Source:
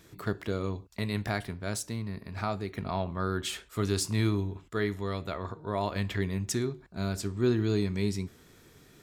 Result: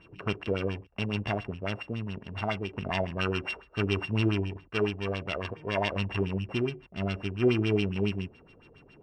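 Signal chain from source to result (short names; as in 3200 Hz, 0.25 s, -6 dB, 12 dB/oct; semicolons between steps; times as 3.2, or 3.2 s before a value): sample sorter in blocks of 16 samples; LFO low-pass sine 7.2 Hz 500–3800 Hz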